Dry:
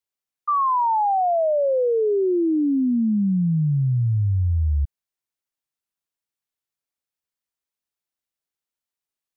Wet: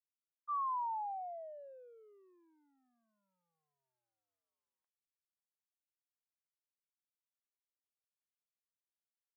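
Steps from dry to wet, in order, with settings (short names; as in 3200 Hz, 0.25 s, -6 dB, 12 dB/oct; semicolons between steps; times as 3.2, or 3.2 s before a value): limiter -20 dBFS, peak gain reduction 3.5 dB; expander -12 dBFS; HPF 920 Hz 24 dB/oct; gain +6.5 dB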